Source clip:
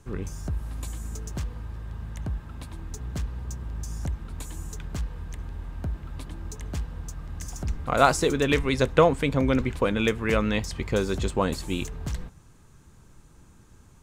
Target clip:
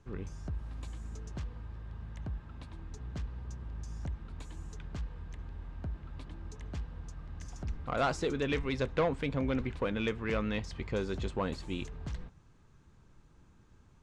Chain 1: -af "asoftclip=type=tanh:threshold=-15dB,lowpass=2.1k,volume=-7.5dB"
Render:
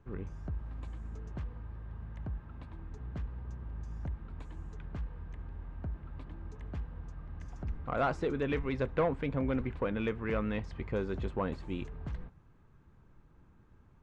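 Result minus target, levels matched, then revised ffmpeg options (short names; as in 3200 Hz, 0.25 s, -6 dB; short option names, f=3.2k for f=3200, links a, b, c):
4000 Hz band -8.0 dB
-af "asoftclip=type=tanh:threshold=-15dB,lowpass=4.8k,volume=-7.5dB"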